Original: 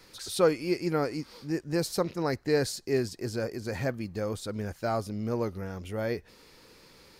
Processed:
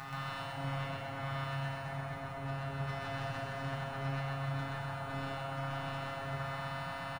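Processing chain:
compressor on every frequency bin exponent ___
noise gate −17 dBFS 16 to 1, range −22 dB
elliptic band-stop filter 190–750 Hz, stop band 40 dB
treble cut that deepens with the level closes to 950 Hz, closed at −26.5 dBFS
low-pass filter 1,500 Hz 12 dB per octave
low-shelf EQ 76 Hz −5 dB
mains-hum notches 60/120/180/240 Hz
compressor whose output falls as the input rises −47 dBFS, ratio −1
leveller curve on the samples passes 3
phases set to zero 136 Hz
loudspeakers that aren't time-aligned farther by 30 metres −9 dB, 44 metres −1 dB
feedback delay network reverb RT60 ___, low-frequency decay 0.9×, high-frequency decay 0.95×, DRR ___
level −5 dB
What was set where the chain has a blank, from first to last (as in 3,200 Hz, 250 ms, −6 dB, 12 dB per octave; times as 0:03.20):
0.2, 3.2 s, −7 dB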